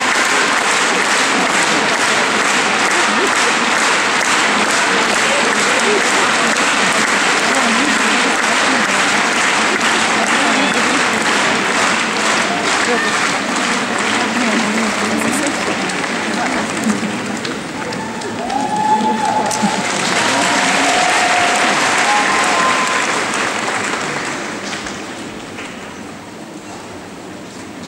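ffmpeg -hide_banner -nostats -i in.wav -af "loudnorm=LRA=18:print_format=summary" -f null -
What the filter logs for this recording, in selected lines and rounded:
Input Integrated:    -13.7 LUFS
Input True Peak:      -1.8 dBTP
Input LRA:            12.1 LU
Input Threshold:     -24.5 LUFS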